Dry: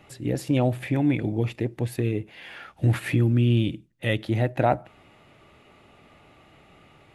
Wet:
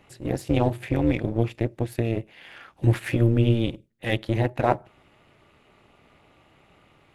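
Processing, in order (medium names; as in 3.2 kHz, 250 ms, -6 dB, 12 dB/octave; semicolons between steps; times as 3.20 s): AM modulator 230 Hz, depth 70%; in parallel at -4 dB: crossover distortion -35.5 dBFS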